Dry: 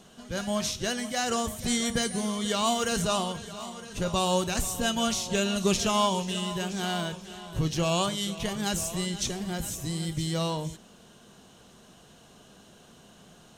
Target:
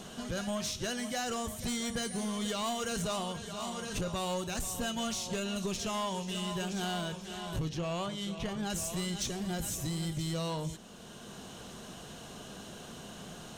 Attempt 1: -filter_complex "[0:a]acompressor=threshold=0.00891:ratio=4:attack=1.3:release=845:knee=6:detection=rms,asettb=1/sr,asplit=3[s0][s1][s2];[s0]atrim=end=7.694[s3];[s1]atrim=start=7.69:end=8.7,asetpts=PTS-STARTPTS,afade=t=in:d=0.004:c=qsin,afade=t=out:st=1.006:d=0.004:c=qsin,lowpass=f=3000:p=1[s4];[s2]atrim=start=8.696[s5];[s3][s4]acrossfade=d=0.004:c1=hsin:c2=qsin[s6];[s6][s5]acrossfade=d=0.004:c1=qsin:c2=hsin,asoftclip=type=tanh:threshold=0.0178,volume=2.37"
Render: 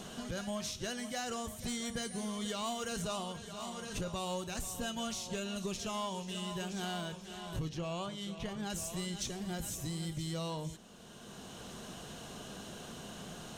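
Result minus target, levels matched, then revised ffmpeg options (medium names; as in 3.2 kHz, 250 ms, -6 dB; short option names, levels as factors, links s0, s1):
compression: peak gain reduction +5 dB
-filter_complex "[0:a]acompressor=threshold=0.0188:ratio=4:attack=1.3:release=845:knee=6:detection=rms,asettb=1/sr,asplit=3[s0][s1][s2];[s0]atrim=end=7.694[s3];[s1]atrim=start=7.69:end=8.7,asetpts=PTS-STARTPTS,afade=t=in:d=0.004:c=qsin,afade=t=out:st=1.006:d=0.004:c=qsin,lowpass=f=3000:p=1[s4];[s2]atrim=start=8.696[s5];[s3][s4]acrossfade=d=0.004:c1=hsin:c2=qsin[s6];[s6][s5]acrossfade=d=0.004:c1=qsin:c2=hsin,asoftclip=type=tanh:threshold=0.0178,volume=2.37"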